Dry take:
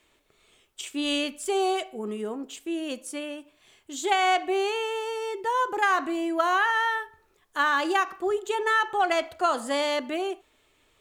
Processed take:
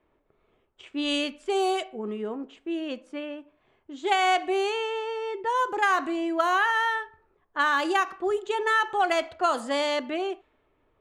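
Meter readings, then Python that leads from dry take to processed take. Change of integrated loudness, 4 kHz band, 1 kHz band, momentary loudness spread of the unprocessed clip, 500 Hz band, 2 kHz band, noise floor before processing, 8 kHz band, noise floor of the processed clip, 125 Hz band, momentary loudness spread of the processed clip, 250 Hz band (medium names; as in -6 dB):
0.0 dB, -0.5 dB, 0.0 dB, 12 LU, 0.0 dB, 0.0 dB, -66 dBFS, -4.5 dB, -70 dBFS, no reading, 13 LU, 0.0 dB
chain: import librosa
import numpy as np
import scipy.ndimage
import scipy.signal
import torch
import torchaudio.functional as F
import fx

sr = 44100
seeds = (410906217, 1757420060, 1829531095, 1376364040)

y = fx.env_lowpass(x, sr, base_hz=1100.0, full_db=-20.5)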